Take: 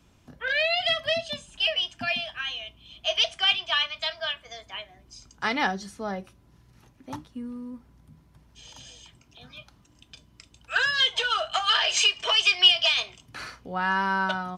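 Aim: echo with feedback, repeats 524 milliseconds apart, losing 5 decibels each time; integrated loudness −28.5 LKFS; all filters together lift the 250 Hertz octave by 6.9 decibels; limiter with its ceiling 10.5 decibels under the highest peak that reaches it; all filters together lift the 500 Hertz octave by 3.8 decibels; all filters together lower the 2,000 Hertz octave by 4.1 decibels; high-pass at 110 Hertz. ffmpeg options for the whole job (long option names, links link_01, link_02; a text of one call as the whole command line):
ffmpeg -i in.wav -af "highpass=110,equalizer=frequency=250:width_type=o:gain=8,equalizer=frequency=500:width_type=o:gain=4.5,equalizer=frequency=2000:width_type=o:gain=-6,alimiter=limit=-19.5dB:level=0:latency=1,aecho=1:1:524|1048|1572|2096|2620|3144|3668:0.562|0.315|0.176|0.0988|0.0553|0.031|0.0173" out.wav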